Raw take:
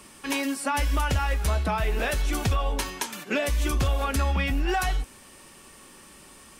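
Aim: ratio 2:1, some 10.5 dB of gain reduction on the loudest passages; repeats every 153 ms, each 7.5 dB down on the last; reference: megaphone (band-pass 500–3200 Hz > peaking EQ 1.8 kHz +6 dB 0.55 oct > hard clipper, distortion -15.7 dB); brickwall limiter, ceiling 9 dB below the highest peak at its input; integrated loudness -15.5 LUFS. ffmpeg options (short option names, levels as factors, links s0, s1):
-af "acompressor=threshold=0.00891:ratio=2,alimiter=level_in=2.11:limit=0.0631:level=0:latency=1,volume=0.473,highpass=500,lowpass=3200,equalizer=f=1800:t=o:w=0.55:g=6,aecho=1:1:153|306|459|612|765:0.422|0.177|0.0744|0.0312|0.0131,asoftclip=type=hard:threshold=0.0158,volume=22.4"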